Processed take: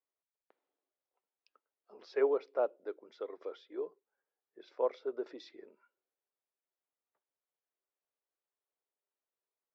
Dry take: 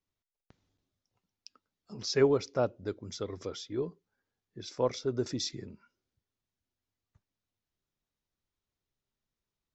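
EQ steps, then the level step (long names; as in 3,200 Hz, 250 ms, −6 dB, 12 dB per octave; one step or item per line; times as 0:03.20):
high-pass filter 400 Hz 24 dB per octave
high-frequency loss of the air 430 metres
parametric band 570 Hz +4 dB 2.1 octaves
−4.0 dB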